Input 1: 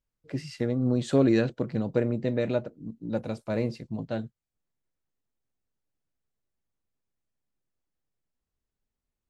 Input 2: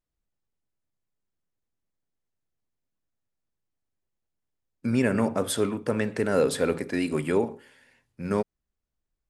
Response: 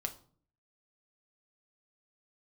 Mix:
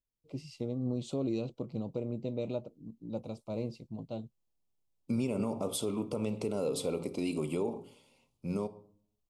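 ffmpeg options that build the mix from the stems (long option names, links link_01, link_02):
-filter_complex "[0:a]volume=-8dB[link_01];[1:a]adelay=250,volume=-5.5dB,asplit=2[link_02][link_03];[link_03]volume=-5dB[link_04];[2:a]atrim=start_sample=2205[link_05];[link_04][link_05]afir=irnorm=-1:irlink=0[link_06];[link_01][link_02][link_06]amix=inputs=3:normalize=0,asuperstop=centerf=1700:order=4:qfactor=1.3,alimiter=limit=-23.5dB:level=0:latency=1:release=154"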